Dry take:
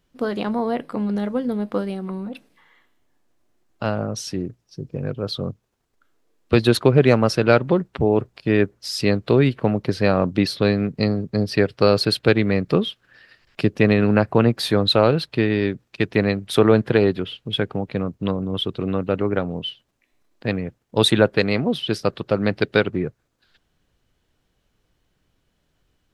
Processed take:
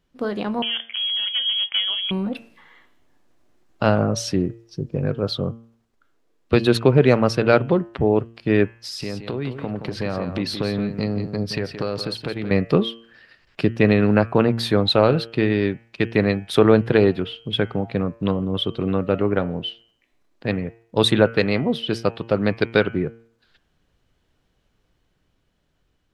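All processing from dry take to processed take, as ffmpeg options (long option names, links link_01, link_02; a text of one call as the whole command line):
ffmpeg -i in.wav -filter_complex "[0:a]asettb=1/sr,asplit=3[link_01][link_02][link_03];[link_01]atrim=end=0.624[link_04];[link_02]atrim=start=0.62:end=2.11,asetpts=PTS-STARTPTS,afade=type=in:duration=0.004:curve=qsin,afade=type=out:start_time=1.486:duration=0.004:curve=qsin,highpass=130,asoftclip=type=hard:threshold=-17.5dB,lowpass=frequency=3000:width_type=q:width=0.5098,lowpass=frequency=3000:width_type=q:width=0.6013,lowpass=frequency=3000:width_type=q:width=0.9,lowpass=frequency=3000:width_type=q:width=2.563,afreqshift=-3500[link_05];[link_03]atrim=start=2.106[link_06];[link_04][link_05]acrossfade=duration=0.004:curve1=hsin:curve2=qsin[link_07];[link_07][link_06]acrossfade=duration=0.004:curve1=qsin:curve2=hsin,asettb=1/sr,asplit=3[link_08][link_09][link_10];[link_08]atrim=end=8.784[link_11];[link_09]atrim=start=8.78:end=12.51,asetpts=PTS-STARTPTS,afade=type=in:duration=0.004:curve=qsin,afade=type=out:start_time=3.726:duration=0.004:curve=qsin,acompressor=threshold=-27dB:ratio=4:attack=3.2:release=140:knee=1:detection=peak,aecho=1:1:172:0.335,atrim=end_sample=164493[link_12];[link_10]atrim=start=12.506[link_13];[link_11][link_12]acrossfade=duration=0.004:curve1=hsin:curve2=qsin[link_14];[link_14][link_13]acrossfade=duration=0.004:curve1=qsin:curve2=hsin,highshelf=frequency=6800:gain=-7,bandreject=frequency=114.8:width_type=h:width=4,bandreject=frequency=229.6:width_type=h:width=4,bandreject=frequency=344.4:width_type=h:width=4,bandreject=frequency=459.2:width_type=h:width=4,bandreject=frequency=574:width_type=h:width=4,bandreject=frequency=688.8:width_type=h:width=4,bandreject=frequency=803.6:width_type=h:width=4,bandreject=frequency=918.4:width_type=h:width=4,bandreject=frequency=1033.2:width_type=h:width=4,bandreject=frequency=1148:width_type=h:width=4,bandreject=frequency=1262.8:width_type=h:width=4,bandreject=frequency=1377.6:width_type=h:width=4,bandreject=frequency=1492.4:width_type=h:width=4,bandreject=frequency=1607.2:width_type=h:width=4,bandreject=frequency=1722:width_type=h:width=4,bandreject=frequency=1836.8:width_type=h:width=4,bandreject=frequency=1951.6:width_type=h:width=4,bandreject=frequency=2066.4:width_type=h:width=4,bandreject=frequency=2181.2:width_type=h:width=4,bandreject=frequency=2296:width_type=h:width=4,bandreject=frequency=2410.8:width_type=h:width=4,bandreject=frequency=2525.6:width_type=h:width=4,bandreject=frequency=2640.4:width_type=h:width=4,bandreject=frequency=2755.2:width_type=h:width=4,bandreject=frequency=2870:width_type=h:width=4,bandreject=frequency=2984.8:width_type=h:width=4,bandreject=frequency=3099.6:width_type=h:width=4,bandreject=frequency=3214.4:width_type=h:width=4,dynaudnorm=framelen=540:gausssize=7:maxgain=11.5dB,volume=-1dB" out.wav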